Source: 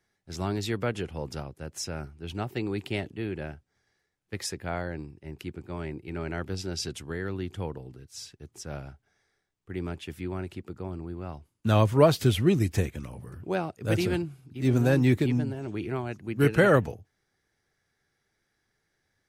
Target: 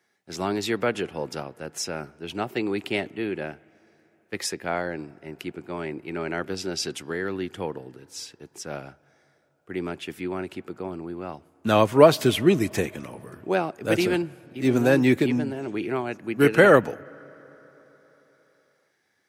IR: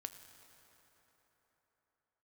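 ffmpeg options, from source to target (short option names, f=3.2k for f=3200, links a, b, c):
-filter_complex "[0:a]highpass=230,equalizer=f=2.4k:t=o:w=0.77:g=2,asplit=2[a][b];[1:a]atrim=start_sample=2205,lowpass=2.8k[c];[b][c]afir=irnorm=-1:irlink=0,volume=-9.5dB[d];[a][d]amix=inputs=2:normalize=0,volume=4.5dB"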